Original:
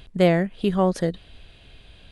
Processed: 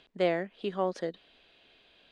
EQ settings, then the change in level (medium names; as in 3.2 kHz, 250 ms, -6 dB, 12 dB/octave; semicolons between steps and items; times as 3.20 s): three-band isolator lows -24 dB, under 240 Hz, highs -24 dB, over 6.6 kHz; -7.5 dB